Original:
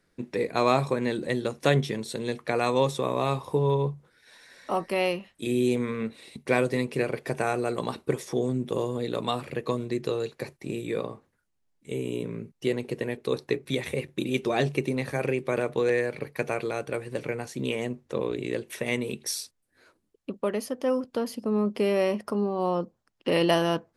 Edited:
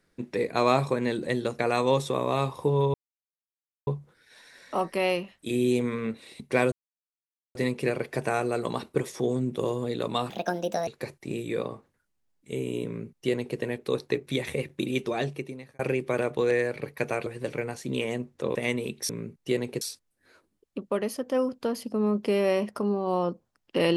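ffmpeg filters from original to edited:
ffmpeg -i in.wav -filter_complex "[0:a]asplit=11[link_01][link_02][link_03][link_04][link_05][link_06][link_07][link_08][link_09][link_10][link_11];[link_01]atrim=end=1.592[link_12];[link_02]atrim=start=2.478:end=3.83,asetpts=PTS-STARTPTS,afade=type=out:start_time=1.348:duration=0.004:curve=hsin,apad=pad_dur=0.93[link_13];[link_03]atrim=start=3.83:end=6.68,asetpts=PTS-STARTPTS,afade=type=in:duration=0.004:curve=hsin,afade=type=out:start_time=2.846:duration=0.004:curve=hsin,apad=pad_dur=0.83[link_14];[link_04]atrim=start=6.68:end=9.434,asetpts=PTS-STARTPTS,afade=type=in:duration=0.004:curve=hsin[link_15];[link_05]atrim=start=9.43:end=10.26,asetpts=PTS-STARTPTS,asetrate=63945,aresample=44100,atrim=end_sample=25243,asetpts=PTS-STARTPTS[link_16];[link_06]atrim=start=10.256:end=15.18,asetpts=PTS-STARTPTS,afade=type=out:start_time=3.984:duration=0.94[link_17];[link_07]atrim=start=15.18:end=16.652,asetpts=PTS-STARTPTS,afade=type=in:duration=0.004:curve=hsin[link_18];[link_08]atrim=start=16.968:end=18.262[link_19];[link_09]atrim=start=18.788:end=19.332[link_20];[link_10]atrim=start=12.248:end=12.972[link_21];[link_11]atrim=start=19.328[link_22];[link_13][link_14][link_15]concat=n=3:v=0:a=1[link_23];[link_12][link_23]acrossfade=duration=0.004:curve1=hsin:curve2=hsin[link_24];[link_24][link_16]acrossfade=duration=0.004:curve1=hsin:curve2=hsin[link_25];[link_17][link_18]concat=n=2:v=0:a=1[link_26];[link_25][link_26]acrossfade=duration=0.004:curve1=hsin:curve2=hsin[link_27];[link_27][link_19]acrossfade=duration=0.004:curve1=hsin:curve2=hsin[link_28];[link_28][link_20]acrossfade=duration=0.004:curve1=hsin:curve2=hsin[link_29];[link_29][link_21]acrossfade=duration=0.004:curve1=hsin:curve2=hsin[link_30];[link_30][link_22]acrossfade=duration=0.004:curve1=hsin:curve2=hsin" out.wav

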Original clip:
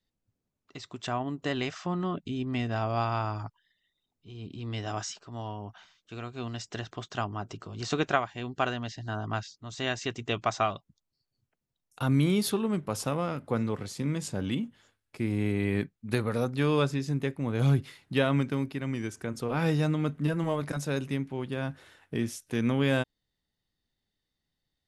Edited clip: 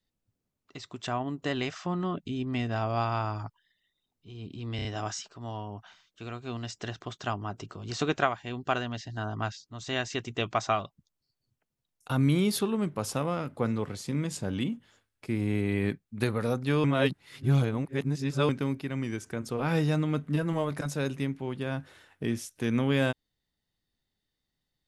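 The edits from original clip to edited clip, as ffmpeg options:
ffmpeg -i in.wav -filter_complex "[0:a]asplit=6[link_01][link_02][link_03][link_04][link_05][link_06];[link_01]atrim=end=4.792[link_07];[link_02]atrim=start=4.758:end=4.792[link_08];[link_03]atrim=start=4.758:end=4.792[link_09];[link_04]atrim=start=4.758:end=16.752[link_10];[link_05]atrim=start=16.748:end=18.402,asetpts=PTS-STARTPTS,areverse[link_11];[link_06]atrim=start=18.398[link_12];[link_07][link_08]acrossfade=duration=0.004:curve1=hsin:curve2=hsin[link_13];[link_13][link_09]acrossfade=duration=0.004:curve1=hsin:curve2=hsin[link_14];[link_14][link_10]acrossfade=duration=0.004:curve1=hsin:curve2=hsin[link_15];[link_15][link_11]acrossfade=duration=0.004:curve1=hsin:curve2=hsin[link_16];[link_16][link_12]acrossfade=duration=0.004:curve1=hsin:curve2=hsin" out.wav

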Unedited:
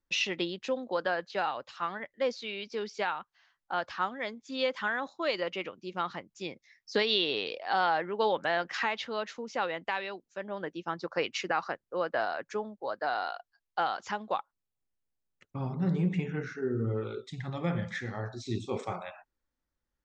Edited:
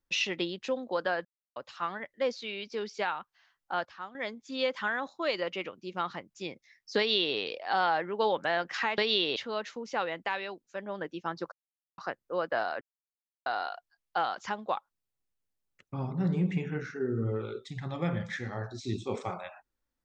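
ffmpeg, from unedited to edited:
ffmpeg -i in.wav -filter_complex "[0:a]asplit=11[link_01][link_02][link_03][link_04][link_05][link_06][link_07][link_08][link_09][link_10][link_11];[link_01]atrim=end=1.25,asetpts=PTS-STARTPTS,afade=type=out:start_time=1.246:duration=0.004:curve=hsin[link_12];[link_02]atrim=start=1.25:end=1.56,asetpts=PTS-STARTPTS,volume=0[link_13];[link_03]atrim=start=1.56:end=3.852,asetpts=PTS-STARTPTS,afade=type=in:duration=0.004:curve=hsin[link_14];[link_04]atrim=start=3.848:end=4.152,asetpts=PTS-STARTPTS,volume=-10.5dB[link_15];[link_05]atrim=start=4.148:end=8.982[link_16];[link_06]atrim=start=6.978:end=7.362[link_17];[link_07]atrim=start=8.978:end=11.14,asetpts=PTS-STARTPTS,afade=type=out:start_time=2.158:duration=0.004:curve=hsin[link_18];[link_08]atrim=start=11.14:end=11.6,asetpts=PTS-STARTPTS,volume=0[link_19];[link_09]atrim=start=11.6:end=12.43,asetpts=PTS-STARTPTS,afade=type=in:duration=0.004:curve=hsin,afade=type=out:start_time=0.826:duration=0.004:curve=hsin[link_20];[link_10]atrim=start=12.43:end=13.08,asetpts=PTS-STARTPTS,volume=0[link_21];[link_11]atrim=start=13.08,asetpts=PTS-STARTPTS,afade=type=in:duration=0.004:curve=hsin[link_22];[link_12][link_13][link_14]concat=n=3:v=0:a=1[link_23];[link_23][link_15]acrossfade=duration=0.004:curve1=hsin:curve2=hsin[link_24];[link_24][link_16]acrossfade=duration=0.004:curve1=hsin:curve2=hsin[link_25];[link_25][link_17]acrossfade=duration=0.004:curve1=hsin:curve2=hsin[link_26];[link_18][link_19][link_20][link_21][link_22]concat=n=5:v=0:a=1[link_27];[link_26][link_27]acrossfade=duration=0.004:curve1=hsin:curve2=hsin" out.wav

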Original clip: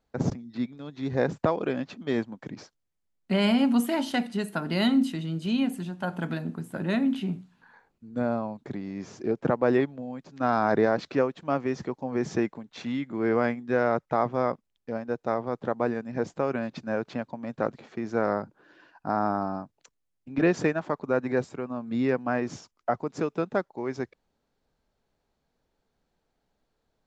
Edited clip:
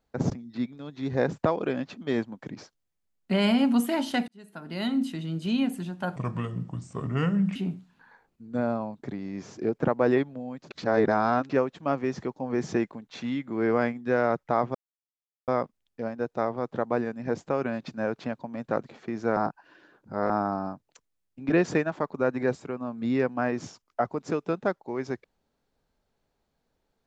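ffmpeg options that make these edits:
ffmpeg -i in.wav -filter_complex "[0:a]asplit=9[link_01][link_02][link_03][link_04][link_05][link_06][link_07][link_08][link_09];[link_01]atrim=end=4.28,asetpts=PTS-STARTPTS,afade=type=out:start_time=4.276:duration=0.004:curve=hsin[link_10];[link_02]atrim=start=4.28:end=6.164,asetpts=PTS-STARTPTS,afade=type=in:duration=1.1[link_11];[link_03]atrim=start=6.16:end=7.18,asetpts=PTS-STARTPTS,asetrate=32193,aresample=44100,atrim=end_sample=61619,asetpts=PTS-STARTPTS[link_12];[link_04]atrim=start=7.176:end=10.332[link_13];[link_05]atrim=start=10.328:end=11.122,asetpts=PTS-STARTPTS,areverse[link_14];[link_06]atrim=start=11.118:end=14.37,asetpts=PTS-STARTPTS,afade=type=out:start_time=3.248:duration=0.004:curve=hsin,apad=pad_dur=0.73[link_15];[link_07]atrim=start=14.37:end=18.262,asetpts=PTS-STARTPTS,afade=type=in:duration=0.004:curve=hsin[link_16];[link_08]atrim=start=18.258:end=19.192,asetpts=PTS-STARTPTS,areverse[link_17];[link_09]atrim=start=19.188[link_18];[link_10][link_11]concat=n=2:v=0:a=1[link_19];[link_19][link_12]acrossfade=duration=0.004:curve1=hsin:curve2=hsin[link_20];[link_20][link_13]acrossfade=duration=0.004:curve1=hsin:curve2=hsin[link_21];[link_21][link_14]acrossfade=duration=0.004:curve1=hsin:curve2=hsin[link_22];[link_15][link_16]concat=n=2:v=0:a=1[link_23];[link_22][link_23]acrossfade=duration=0.004:curve1=hsin:curve2=hsin[link_24];[link_24][link_17]acrossfade=duration=0.004:curve1=hsin:curve2=hsin[link_25];[link_25][link_18]acrossfade=duration=0.004:curve1=hsin:curve2=hsin" out.wav

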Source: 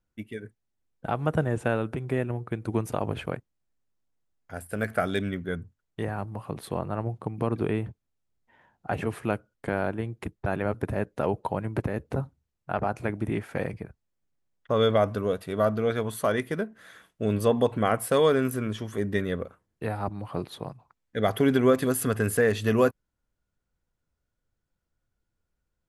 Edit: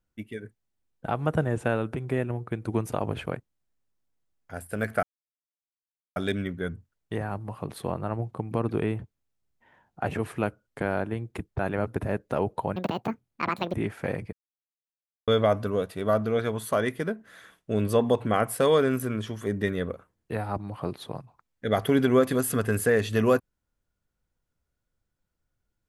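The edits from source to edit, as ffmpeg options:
ffmpeg -i in.wav -filter_complex "[0:a]asplit=6[link_01][link_02][link_03][link_04][link_05][link_06];[link_01]atrim=end=5.03,asetpts=PTS-STARTPTS,afade=type=out:start_time=5.026:duration=0.004:curve=hsin,apad=pad_dur=1.13[link_07];[link_02]atrim=start=5.03:end=11.634,asetpts=PTS-STARTPTS,afade=type=in:duration=0.004:curve=hsin[link_08];[link_03]atrim=start=11.63:end=13.25,asetpts=PTS-STARTPTS,asetrate=73206,aresample=44100,atrim=end_sample=43037,asetpts=PTS-STARTPTS[link_09];[link_04]atrim=start=13.246:end=13.84,asetpts=PTS-STARTPTS,afade=type=out:start_time=0.59:duration=0.004:curve=hsin[link_10];[link_05]atrim=start=13.84:end=14.79,asetpts=PTS-STARTPTS,volume=0[link_11];[link_06]atrim=start=14.79,asetpts=PTS-STARTPTS,afade=type=in:duration=0.004:curve=hsin[link_12];[link_07][link_08]concat=n=2:v=0:a=1[link_13];[link_13][link_09]acrossfade=duration=0.004:curve1=hsin:curve2=hsin[link_14];[link_10][link_11][link_12]concat=n=3:v=0:a=1[link_15];[link_14][link_15]acrossfade=duration=0.004:curve1=hsin:curve2=hsin" out.wav

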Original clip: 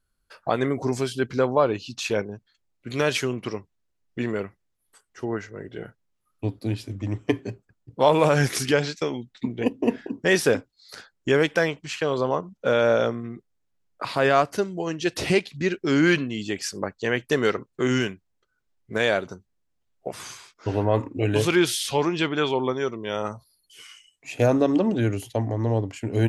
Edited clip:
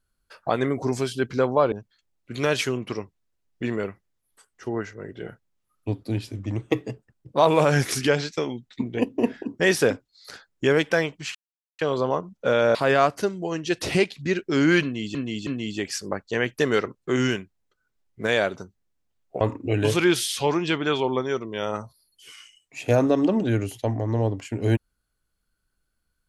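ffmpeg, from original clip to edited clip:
ffmpeg -i in.wav -filter_complex "[0:a]asplit=9[link_01][link_02][link_03][link_04][link_05][link_06][link_07][link_08][link_09];[link_01]atrim=end=1.722[link_10];[link_02]atrim=start=2.278:end=7.124[link_11];[link_03]atrim=start=7.12:end=8.11,asetpts=PTS-STARTPTS,asetrate=48069,aresample=44100,atrim=end_sample=40054,asetpts=PTS-STARTPTS[link_12];[link_04]atrim=start=8.106:end=11.99,asetpts=PTS-STARTPTS,afade=type=out:start_time=3.88:duration=0.004:curve=hsin,apad=pad_dur=0.44[link_13];[link_05]atrim=start=11.99:end=12.952,asetpts=PTS-STARTPTS,afade=type=in:duration=0.004:curve=hsin[link_14];[link_06]atrim=start=14.098:end=16.502[link_15];[link_07]atrim=start=16.178:end=16.502[link_16];[link_08]atrim=start=16.178:end=20.122[link_17];[link_09]atrim=start=20.918[link_18];[link_10][link_11]acrossfade=duration=0.004:curve1=hsin:curve2=hsin[link_19];[link_19][link_12]acrossfade=duration=0.004:curve1=hsin:curve2=hsin[link_20];[link_13][link_14]concat=n=2:v=0:a=1[link_21];[link_20][link_21]acrossfade=duration=0.004:curve1=hsin:curve2=hsin[link_22];[link_22][link_15]acrossfade=duration=0.004:curve1=hsin:curve2=hsin[link_23];[link_23][link_16]acrossfade=duration=0.004:curve1=hsin:curve2=hsin[link_24];[link_24][link_17]acrossfade=duration=0.004:curve1=hsin:curve2=hsin[link_25];[link_25][link_18]acrossfade=duration=0.004:curve1=hsin:curve2=hsin" out.wav

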